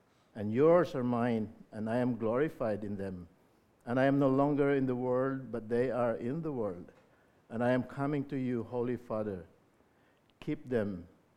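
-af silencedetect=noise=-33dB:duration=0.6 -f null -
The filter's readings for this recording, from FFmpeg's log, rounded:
silence_start: 3.10
silence_end: 3.89 | silence_duration: 0.79
silence_start: 6.71
silence_end: 7.54 | silence_duration: 0.82
silence_start: 9.37
silence_end: 10.42 | silence_duration: 1.04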